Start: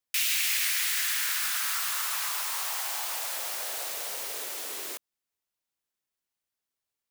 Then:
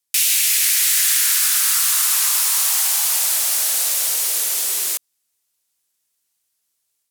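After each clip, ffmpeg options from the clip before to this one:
-filter_complex "[0:a]acrossover=split=880|5700[s0][s1][s2];[s0]alimiter=level_in=10:limit=0.0631:level=0:latency=1,volume=0.1[s3];[s3][s1][s2]amix=inputs=3:normalize=0,equalizer=f=10000:w=0.34:g=14,dynaudnorm=f=540:g=3:m=1.88"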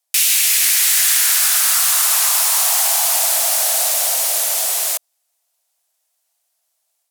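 -af "highpass=f=670:t=q:w=4.9,volume=1.26"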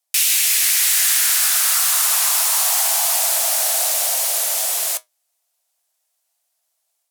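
-af "flanger=delay=8.6:depth=6.5:regen=-68:speed=0.4:shape=triangular,volume=1.33"

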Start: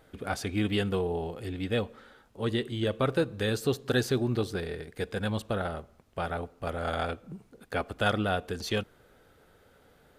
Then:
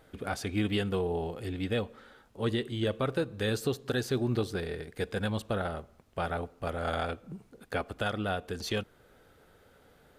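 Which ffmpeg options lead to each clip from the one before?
-af "alimiter=limit=0.126:level=0:latency=1:release=400"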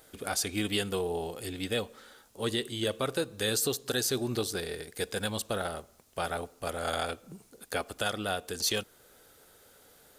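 -af "bass=f=250:g=-6,treble=f=4000:g=15"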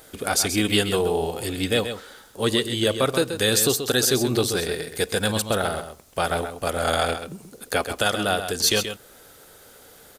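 -af "aecho=1:1:131:0.355,volume=2.82"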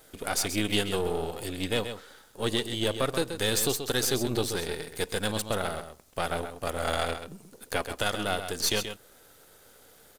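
-af "aeval=exprs='if(lt(val(0),0),0.447*val(0),val(0))':c=same,volume=0.596"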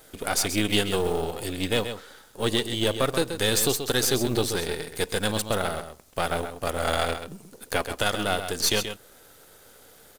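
-af "acrusher=bits=6:mode=log:mix=0:aa=0.000001,volume=1.5"

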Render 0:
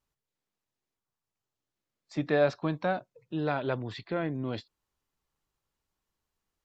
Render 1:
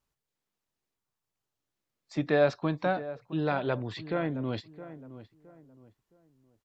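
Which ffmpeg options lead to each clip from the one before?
-filter_complex "[0:a]asplit=2[s0][s1];[s1]adelay=666,lowpass=f=1400:p=1,volume=0.2,asplit=2[s2][s3];[s3]adelay=666,lowpass=f=1400:p=1,volume=0.33,asplit=2[s4][s5];[s5]adelay=666,lowpass=f=1400:p=1,volume=0.33[s6];[s0][s2][s4][s6]amix=inputs=4:normalize=0,volume=1.12"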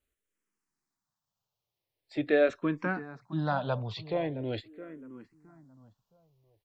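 -filter_complex "[0:a]asplit=2[s0][s1];[s1]afreqshift=-0.43[s2];[s0][s2]amix=inputs=2:normalize=1,volume=1.26"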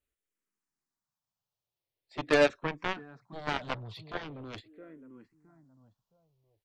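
-af "aeval=exprs='0.224*(cos(1*acos(clip(val(0)/0.224,-1,1)))-cos(1*PI/2))+0.0501*(cos(7*acos(clip(val(0)/0.224,-1,1)))-cos(7*PI/2))':c=same"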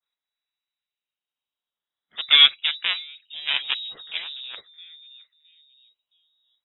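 -af "lowpass=f=3300:t=q:w=0.5098,lowpass=f=3300:t=q:w=0.6013,lowpass=f=3300:t=q:w=0.9,lowpass=f=3300:t=q:w=2.563,afreqshift=-3900,adynamicequalizer=threshold=0.0112:dfrequency=2900:dqfactor=0.86:tfrequency=2900:tqfactor=0.86:attack=5:release=100:ratio=0.375:range=3.5:mode=boostabove:tftype=bell,volume=1.41"

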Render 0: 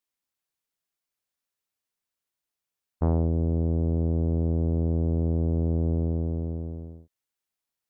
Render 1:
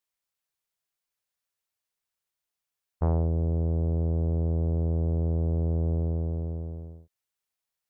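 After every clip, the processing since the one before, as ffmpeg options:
-af "equalizer=f=260:t=o:w=0.89:g=-7.5"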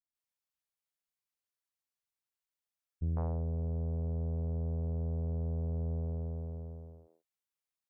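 -filter_complex "[0:a]acrossover=split=330[s0][s1];[s1]adelay=150[s2];[s0][s2]amix=inputs=2:normalize=0,volume=0.398"

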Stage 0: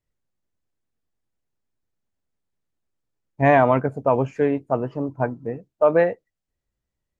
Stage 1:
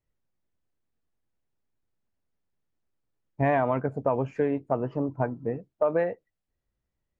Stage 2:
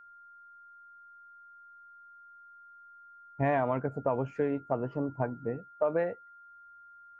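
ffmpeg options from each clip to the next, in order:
-af "lowpass=f=3000:p=1,acompressor=threshold=0.0708:ratio=3"
-af "aeval=exprs='val(0)+0.00447*sin(2*PI*1400*n/s)':c=same,volume=0.631"

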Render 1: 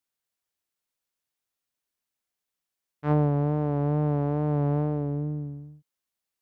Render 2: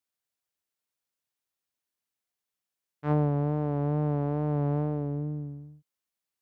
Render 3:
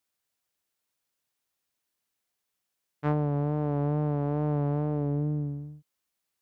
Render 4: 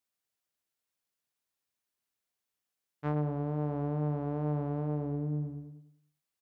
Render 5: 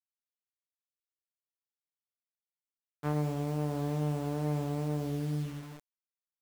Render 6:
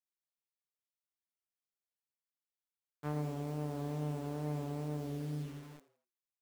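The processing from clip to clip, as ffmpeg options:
-af "highpass=42,volume=0.75"
-af "acompressor=threshold=0.0355:ratio=6,volume=1.88"
-filter_complex "[0:a]asplit=2[s0][s1];[s1]adelay=100,lowpass=f=2000:p=1,volume=0.316,asplit=2[s2][s3];[s3]adelay=100,lowpass=f=2000:p=1,volume=0.4,asplit=2[s4][s5];[s5]adelay=100,lowpass=f=2000:p=1,volume=0.4,asplit=2[s6][s7];[s7]adelay=100,lowpass=f=2000:p=1,volume=0.4[s8];[s0][s2][s4][s6][s8]amix=inputs=5:normalize=0,volume=0.531"
-af "acrusher=bits=7:mix=0:aa=0.000001"
-filter_complex "[0:a]asplit=4[s0][s1][s2][s3];[s1]adelay=83,afreqshift=120,volume=0.15[s4];[s2]adelay=166,afreqshift=240,volume=0.0556[s5];[s3]adelay=249,afreqshift=360,volume=0.0204[s6];[s0][s4][s5][s6]amix=inputs=4:normalize=0,volume=0.501"

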